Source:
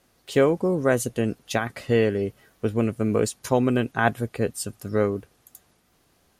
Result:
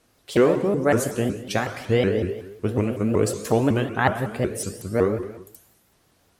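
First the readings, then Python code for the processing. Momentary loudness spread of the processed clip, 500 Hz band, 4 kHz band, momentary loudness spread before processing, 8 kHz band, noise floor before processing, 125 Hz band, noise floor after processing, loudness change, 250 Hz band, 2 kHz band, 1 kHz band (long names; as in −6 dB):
7 LU, +1.0 dB, +1.5 dB, 7 LU, +0.5 dB, −65 dBFS, +2.0 dB, −63 dBFS, +1.5 dB, +1.0 dB, +0.5 dB, +1.5 dB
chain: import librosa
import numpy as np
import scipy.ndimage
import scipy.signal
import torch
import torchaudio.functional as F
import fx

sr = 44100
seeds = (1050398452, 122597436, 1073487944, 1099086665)

y = fx.rev_gated(x, sr, seeds[0], gate_ms=410, shape='falling', drr_db=6.0)
y = fx.vibrato_shape(y, sr, shape='saw_up', rate_hz=5.4, depth_cents=250.0)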